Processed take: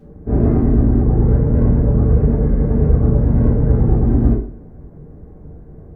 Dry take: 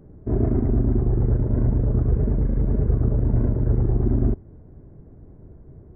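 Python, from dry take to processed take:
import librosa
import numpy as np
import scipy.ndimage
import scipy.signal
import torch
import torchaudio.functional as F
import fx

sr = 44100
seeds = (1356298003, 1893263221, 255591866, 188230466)

p1 = fx.peak_eq(x, sr, hz=90.0, db=-6.5, octaves=0.81)
p2 = fx.clip_asym(p1, sr, top_db=-16.0, bottom_db=-13.0)
p3 = p1 + (p2 * librosa.db_to_amplitude(-8.0))
p4 = fx.rev_double_slope(p3, sr, seeds[0], early_s=0.41, late_s=1.7, knee_db=-26, drr_db=-8.0)
y = p4 * librosa.db_to_amplitude(-2.5)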